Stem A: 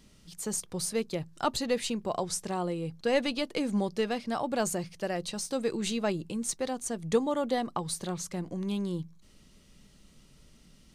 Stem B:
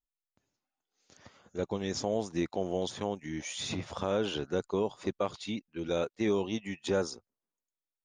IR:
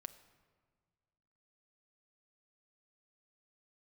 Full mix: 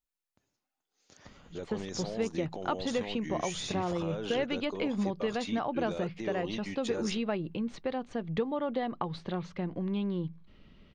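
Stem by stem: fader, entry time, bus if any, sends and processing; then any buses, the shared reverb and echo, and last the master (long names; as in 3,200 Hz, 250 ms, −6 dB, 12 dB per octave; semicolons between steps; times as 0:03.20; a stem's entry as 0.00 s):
+2.0 dB, 1.25 s, no send, low-pass filter 3,300 Hz 24 dB per octave; downward compressor 3 to 1, threshold −31 dBFS, peak gain reduction 9 dB
+1.0 dB, 0.00 s, no send, brickwall limiter −29.5 dBFS, peak gain reduction 11.5 dB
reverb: not used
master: no processing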